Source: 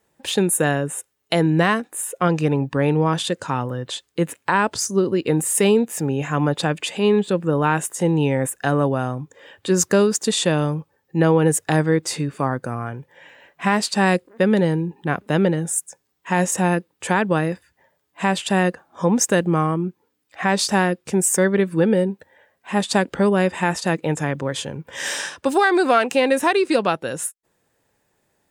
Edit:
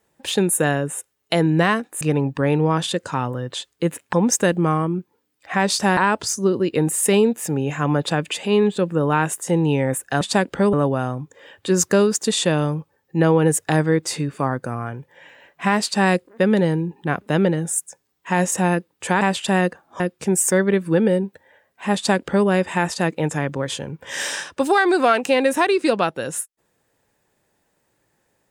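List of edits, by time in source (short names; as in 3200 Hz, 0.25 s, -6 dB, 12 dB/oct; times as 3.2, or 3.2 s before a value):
2.01–2.37 cut
17.21–18.23 cut
19.02–20.86 move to 4.49
22.81–23.33 copy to 8.73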